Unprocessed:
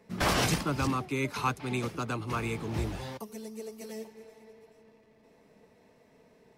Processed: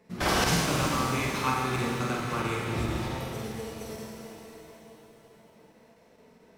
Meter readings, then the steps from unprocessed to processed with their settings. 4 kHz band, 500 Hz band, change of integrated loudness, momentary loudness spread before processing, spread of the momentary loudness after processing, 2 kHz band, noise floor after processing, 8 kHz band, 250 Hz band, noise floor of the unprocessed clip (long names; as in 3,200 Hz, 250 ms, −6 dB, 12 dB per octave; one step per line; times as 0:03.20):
+4.0 dB, +3.0 dB, +3.5 dB, 15 LU, 18 LU, +4.0 dB, −59 dBFS, +4.5 dB, +2.5 dB, −62 dBFS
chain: flutter between parallel walls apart 8 metres, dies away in 0.8 s
regular buffer underruns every 0.22 s, samples 1,024, zero, from 0:00.44
reverb with rising layers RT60 3.4 s, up +7 semitones, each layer −8 dB, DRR 1 dB
level −1.5 dB